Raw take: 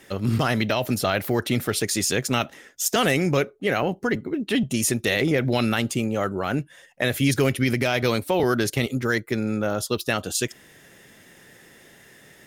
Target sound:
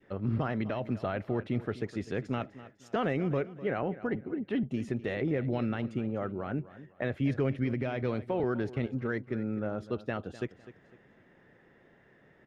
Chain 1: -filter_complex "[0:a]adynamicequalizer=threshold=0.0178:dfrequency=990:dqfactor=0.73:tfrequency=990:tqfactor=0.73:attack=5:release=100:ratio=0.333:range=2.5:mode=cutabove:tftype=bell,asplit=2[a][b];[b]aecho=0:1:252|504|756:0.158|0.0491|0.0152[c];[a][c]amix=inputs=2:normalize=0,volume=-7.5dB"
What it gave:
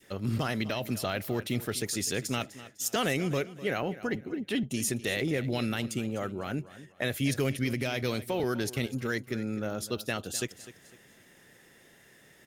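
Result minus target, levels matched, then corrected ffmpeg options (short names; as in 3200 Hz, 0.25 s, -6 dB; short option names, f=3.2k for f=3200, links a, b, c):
2000 Hz band +4.0 dB
-filter_complex "[0:a]adynamicequalizer=threshold=0.0178:dfrequency=990:dqfactor=0.73:tfrequency=990:tqfactor=0.73:attack=5:release=100:ratio=0.333:range=2.5:mode=cutabove:tftype=bell,lowpass=1.5k,asplit=2[a][b];[b]aecho=0:1:252|504|756:0.158|0.0491|0.0152[c];[a][c]amix=inputs=2:normalize=0,volume=-7.5dB"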